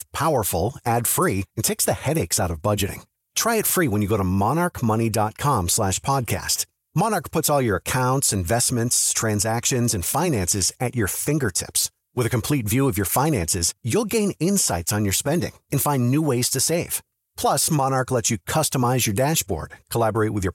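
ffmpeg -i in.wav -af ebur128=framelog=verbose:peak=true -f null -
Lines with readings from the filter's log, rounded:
Integrated loudness:
  I:         -21.4 LUFS
  Threshold: -31.5 LUFS
Loudness range:
  LRA:         1.6 LU
  Threshold: -41.4 LUFS
  LRA low:   -22.0 LUFS
  LRA high:  -20.4 LUFS
True peak:
  Peak:       -7.7 dBFS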